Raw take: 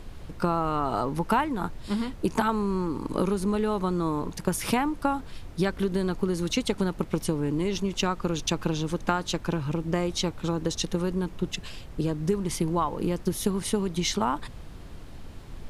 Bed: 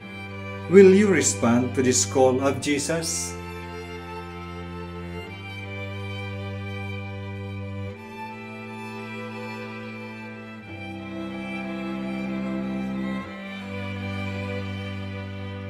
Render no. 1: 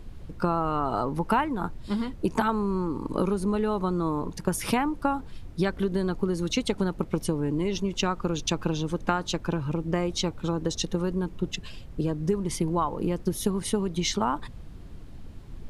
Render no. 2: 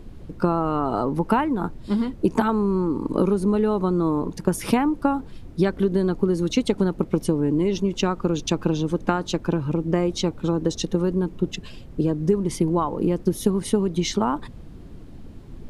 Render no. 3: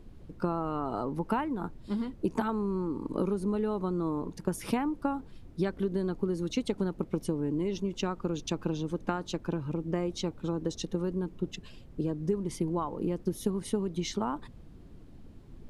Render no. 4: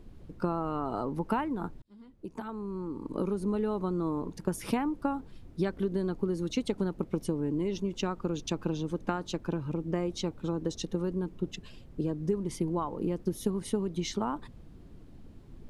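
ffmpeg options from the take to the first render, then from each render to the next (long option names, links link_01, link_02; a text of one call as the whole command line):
ffmpeg -i in.wav -af "afftdn=noise_reduction=7:noise_floor=-43" out.wav
ffmpeg -i in.wav -af "equalizer=frequency=300:width_type=o:width=2.2:gain=7" out.wav
ffmpeg -i in.wav -af "volume=-9.5dB" out.wav
ffmpeg -i in.wav -filter_complex "[0:a]asplit=2[link_01][link_02];[link_01]atrim=end=1.82,asetpts=PTS-STARTPTS,afade=type=out:start_time=1.816:duration=0.004:curve=hsin[link_03];[link_02]atrim=start=1.82,asetpts=PTS-STARTPTS,afade=type=in:duration=1.7[link_04];[link_03][link_04]concat=n=2:v=0:a=1" out.wav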